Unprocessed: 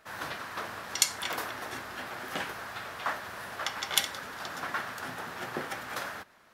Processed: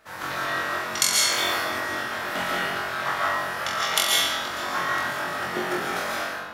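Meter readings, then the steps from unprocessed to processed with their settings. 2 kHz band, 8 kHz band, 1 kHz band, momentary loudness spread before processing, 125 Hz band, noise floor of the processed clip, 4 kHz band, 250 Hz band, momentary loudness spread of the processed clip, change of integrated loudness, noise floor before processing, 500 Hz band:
+10.5 dB, +8.0 dB, +10.0 dB, 11 LU, +7.5 dB, −34 dBFS, +10.0 dB, +9.5 dB, 9 LU, +9.5 dB, −58 dBFS, +10.5 dB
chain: flutter between parallel walls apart 3.8 metres, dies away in 0.49 s
comb and all-pass reverb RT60 1.2 s, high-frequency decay 0.75×, pre-delay 95 ms, DRR −4 dB
level +1 dB

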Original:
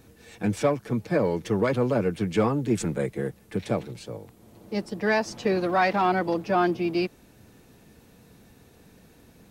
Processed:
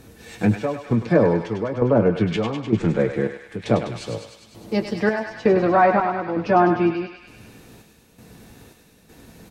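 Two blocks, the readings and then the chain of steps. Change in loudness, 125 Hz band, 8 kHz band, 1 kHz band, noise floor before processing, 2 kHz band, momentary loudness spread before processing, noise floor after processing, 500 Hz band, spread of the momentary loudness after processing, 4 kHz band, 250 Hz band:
+5.0 dB, +6.0 dB, can't be measured, +5.0 dB, −56 dBFS, +2.5 dB, 10 LU, −54 dBFS, +5.0 dB, 11 LU, +1.5 dB, +5.5 dB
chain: treble cut that deepens with the level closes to 1,300 Hz, closed at −19.5 dBFS
square-wave tremolo 1.1 Hz, depth 65%, duty 60%
double-tracking delay 18 ms −10.5 dB
on a send: feedback echo with a high-pass in the loop 101 ms, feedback 76%, high-pass 1,100 Hz, level −5 dB
on the sum: level +7 dB

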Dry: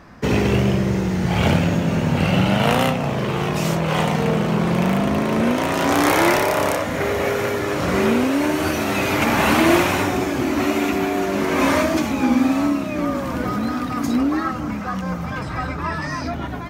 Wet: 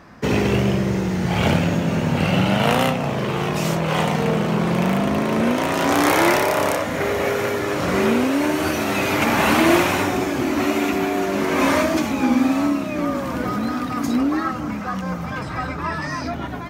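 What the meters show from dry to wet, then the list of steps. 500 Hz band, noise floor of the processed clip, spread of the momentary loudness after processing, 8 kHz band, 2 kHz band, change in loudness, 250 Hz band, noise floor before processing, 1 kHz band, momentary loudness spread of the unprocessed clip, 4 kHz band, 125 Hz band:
0.0 dB, −28 dBFS, 9 LU, 0.0 dB, 0.0 dB, −0.5 dB, −0.5 dB, −27 dBFS, 0.0 dB, 9 LU, 0.0 dB, −1.5 dB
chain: low-shelf EQ 66 Hz −8 dB

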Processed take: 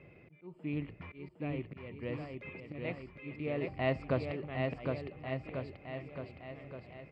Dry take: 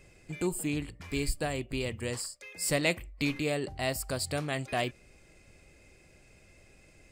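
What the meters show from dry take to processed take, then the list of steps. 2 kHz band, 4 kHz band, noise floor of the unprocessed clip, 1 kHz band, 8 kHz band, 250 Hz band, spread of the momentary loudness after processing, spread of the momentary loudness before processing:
−8.0 dB, −15.5 dB, −59 dBFS, −5.5 dB, below −40 dB, −4.5 dB, 14 LU, 7 LU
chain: volume swells 790 ms
loudspeaker in its box 100–2,400 Hz, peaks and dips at 150 Hz +3 dB, 780 Hz −3 dB, 1,600 Hz −9 dB
bouncing-ball delay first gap 760 ms, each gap 0.9×, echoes 5
level +3.5 dB

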